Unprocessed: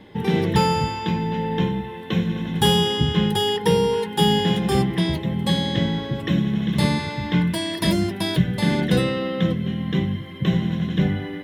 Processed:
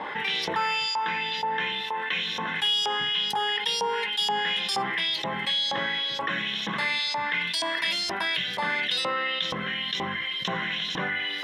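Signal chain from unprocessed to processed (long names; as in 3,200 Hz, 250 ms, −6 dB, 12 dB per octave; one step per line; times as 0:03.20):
auto-filter band-pass saw up 2.1 Hz 900–5,700 Hz
low-shelf EQ 370 Hz −8 dB
notch filter 360 Hz, Q 12
envelope flattener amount 70%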